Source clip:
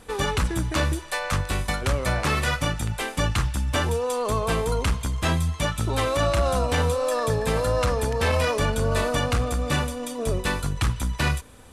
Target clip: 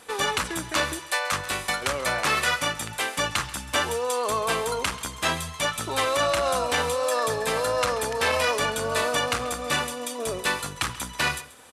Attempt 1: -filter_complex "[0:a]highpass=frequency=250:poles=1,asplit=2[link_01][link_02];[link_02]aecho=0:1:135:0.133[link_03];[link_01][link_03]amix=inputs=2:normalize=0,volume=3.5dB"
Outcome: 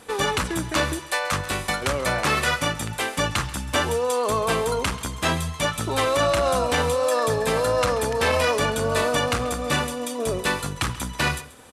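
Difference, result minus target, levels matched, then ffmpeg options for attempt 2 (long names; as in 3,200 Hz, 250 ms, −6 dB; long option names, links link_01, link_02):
250 Hz band +5.0 dB
-filter_complex "[0:a]highpass=frequency=740:poles=1,asplit=2[link_01][link_02];[link_02]aecho=0:1:135:0.133[link_03];[link_01][link_03]amix=inputs=2:normalize=0,volume=3.5dB"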